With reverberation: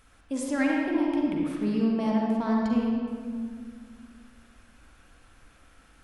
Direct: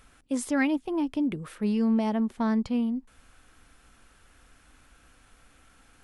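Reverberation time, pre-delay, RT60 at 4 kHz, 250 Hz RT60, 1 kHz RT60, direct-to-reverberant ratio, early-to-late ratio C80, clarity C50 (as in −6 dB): 2.1 s, 39 ms, 1.2 s, 2.6 s, 1.9 s, −2.5 dB, 0.5 dB, −1.5 dB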